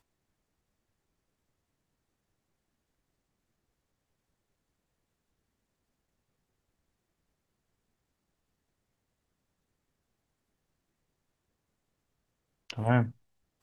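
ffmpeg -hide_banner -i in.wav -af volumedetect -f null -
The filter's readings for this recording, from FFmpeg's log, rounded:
mean_volume: -42.0 dB
max_volume: -11.1 dB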